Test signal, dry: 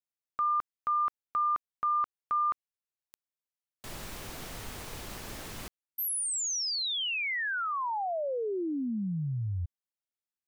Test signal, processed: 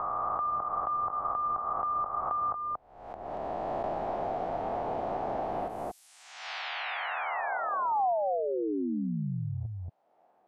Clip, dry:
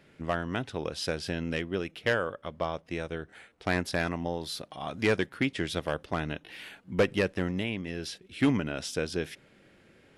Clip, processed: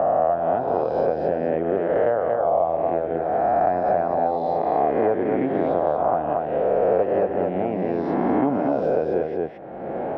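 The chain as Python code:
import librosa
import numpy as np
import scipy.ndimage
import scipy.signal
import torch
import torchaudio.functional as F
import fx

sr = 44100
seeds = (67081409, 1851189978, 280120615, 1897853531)

y = fx.spec_swells(x, sr, rise_s=1.49)
y = fx.lowpass_res(y, sr, hz=730.0, q=4.9)
y = fx.low_shelf(y, sr, hz=170.0, db=-12.0)
y = y + 10.0 ** (-6.5 / 20.0) * np.pad(y, (int(231 * sr / 1000.0), 0))[:len(y)]
y = fx.band_squash(y, sr, depth_pct=100)
y = y * 10.0 ** (2.0 / 20.0)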